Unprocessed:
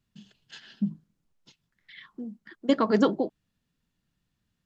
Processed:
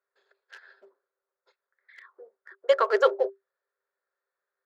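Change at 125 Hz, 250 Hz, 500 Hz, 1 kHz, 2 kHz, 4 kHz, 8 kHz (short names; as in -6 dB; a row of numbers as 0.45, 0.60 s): under -40 dB, under -20 dB, +4.0 dB, +3.5 dB, +5.5 dB, -0.5 dB, n/a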